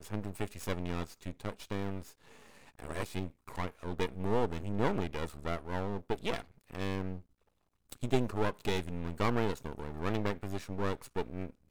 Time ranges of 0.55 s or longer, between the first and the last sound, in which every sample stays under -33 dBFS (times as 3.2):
2–2.8
7.16–7.92